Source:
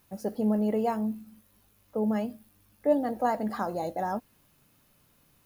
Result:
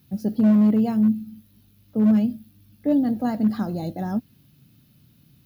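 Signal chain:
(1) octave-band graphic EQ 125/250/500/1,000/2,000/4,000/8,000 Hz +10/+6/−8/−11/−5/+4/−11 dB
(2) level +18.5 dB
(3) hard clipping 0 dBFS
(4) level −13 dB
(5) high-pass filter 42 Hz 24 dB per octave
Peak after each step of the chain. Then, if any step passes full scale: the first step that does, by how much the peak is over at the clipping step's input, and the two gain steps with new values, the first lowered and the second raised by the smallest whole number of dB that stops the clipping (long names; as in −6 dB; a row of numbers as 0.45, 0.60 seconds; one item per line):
−13.0, +5.5, 0.0, −13.0, −10.0 dBFS
step 2, 5.5 dB
step 2 +12.5 dB, step 4 −7 dB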